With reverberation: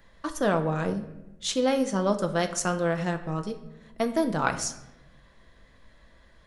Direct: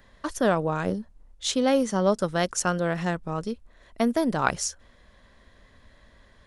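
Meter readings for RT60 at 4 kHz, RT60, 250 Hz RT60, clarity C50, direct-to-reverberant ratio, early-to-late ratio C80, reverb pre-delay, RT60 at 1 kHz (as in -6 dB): 0.65 s, 1.0 s, 1.3 s, 12.0 dB, 5.5 dB, 14.5 dB, 6 ms, 0.85 s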